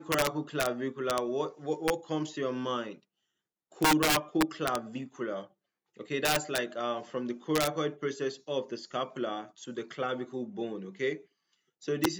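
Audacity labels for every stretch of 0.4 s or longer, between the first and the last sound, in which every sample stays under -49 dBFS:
2.980000	3.720000	silence
5.470000	5.970000	silence
11.220000	11.820000	silence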